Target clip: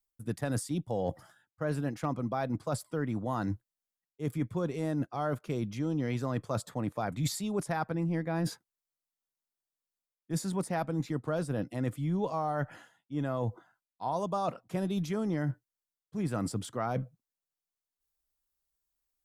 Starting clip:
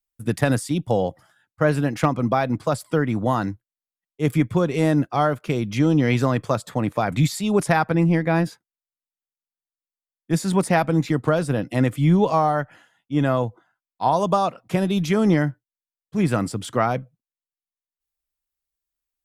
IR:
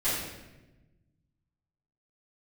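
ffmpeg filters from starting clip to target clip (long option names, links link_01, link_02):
-af "equalizer=frequency=2500:width=1.2:gain=-5,areverse,acompressor=threshold=-32dB:ratio=5,areverse,volume=1.5dB"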